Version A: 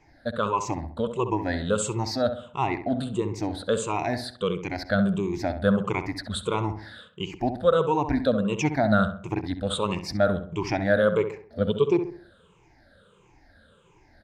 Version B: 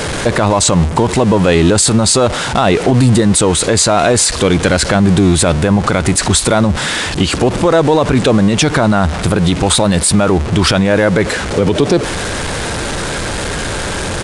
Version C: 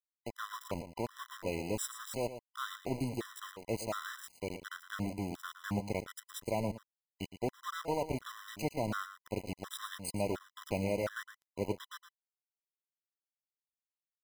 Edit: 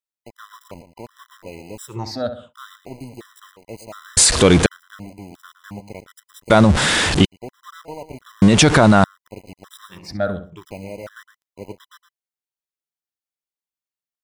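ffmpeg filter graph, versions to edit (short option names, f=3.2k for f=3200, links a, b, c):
-filter_complex "[0:a]asplit=2[a][b];[1:a]asplit=3[c][d][e];[2:a]asplit=6[f][g][h][i][j][k];[f]atrim=end=1.97[l];[a]atrim=start=1.87:end=2.54[m];[g]atrim=start=2.44:end=4.172[n];[c]atrim=start=4.168:end=4.662[o];[h]atrim=start=4.658:end=6.502[p];[d]atrim=start=6.498:end=7.252[q];[i]atrim=start=7.248:end=8.422[r];[e]atrim=start=8.418:end=9.042[s];[j]atrim=start=9.038:end=10.13[t];[b]atrim=start=9.89:end=10.65[u];[k]atrim=start=10.41[v];[l][m]acrossfade=d=0.1:c1=tri:c2=tri[w];[w][n]acrossfade=d=0.1:c1=tri:c2=tri[x];[x][o]acrossfade=d=0.004:c1=hsin:c2=hsin[y];[y][p]acrossfade=d=0.004:c1=hsin:c2=hsin[z];[z][q]acrossfade=d=0.004:c1=hsin:c2=hsin[aa];[aa][r]acrossfade=d=0.004:c1=hsin:c2=hsin[ab];[ab][s]acrossfade=d=0.004:c1=hsin:c2=hsin[ac];[ac][t]acrossfade=d=0.004:c1=hsin:c2=hsin[ad];[ad][u]acrossfade=d=0.24:c1=tri:c2=tri[ae];[ae][v]acrossfade=d=0.24:c1=tri:c2=tri"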